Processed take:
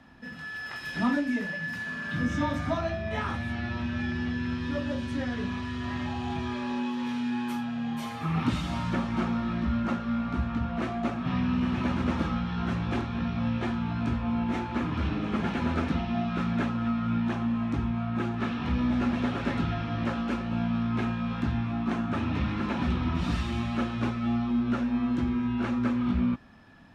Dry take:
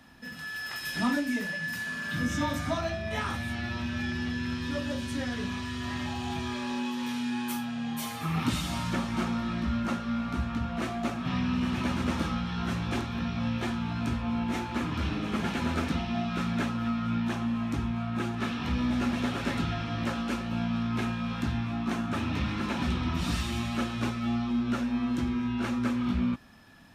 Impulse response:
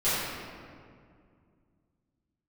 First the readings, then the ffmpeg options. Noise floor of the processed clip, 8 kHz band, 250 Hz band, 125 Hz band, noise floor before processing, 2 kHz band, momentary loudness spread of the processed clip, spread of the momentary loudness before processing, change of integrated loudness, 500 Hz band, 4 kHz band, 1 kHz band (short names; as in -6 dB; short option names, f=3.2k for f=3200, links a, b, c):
-38 dBFS, n/a, +2.0 dB, +2.0 dB, -37 dBFS, -0.5 dB, 5 LU, 4 LU, +1.5 dB, +1.5 dB, -4.0 dB, +1.0 dB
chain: -af "aemphasis=mode=reproduction:type=75fm,volume=1dB"